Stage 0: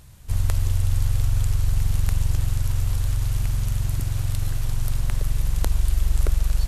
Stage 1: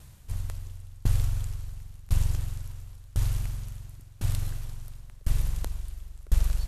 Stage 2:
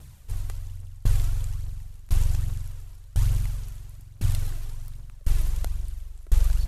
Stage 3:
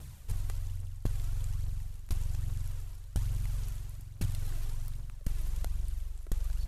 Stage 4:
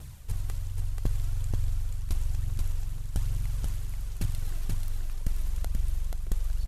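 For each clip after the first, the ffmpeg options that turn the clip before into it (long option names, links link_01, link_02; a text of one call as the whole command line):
ffmpeg -i in.wav -af "aeval=exprs='val(0)*pow(10,-28*if(lt(mod(0.95*n/s,1),2*abs(0.95)/1000),1-mod(0.95*n/s,1)/(2*abs(0.95)/1000),(mod(0.95*n/s,1)-2*abs(0.95)/1000)/(1-2*abs(0.95)/1000))/20)':channel_layout=same" out.wav
ffmpeg -i in.wav -af "aphaser=in_gain=1:out_gain=1:delay=3.2:decay=0.41:speed=1.2:type=triangular" out.wav
ffmpeg -i in.wav -af "acompressor=threshold=-27dB:ratio=12" out.wav
ffmpeg -i in.wav -af "aecho=1:1:483:0.668,volume=2.5dB" out.wav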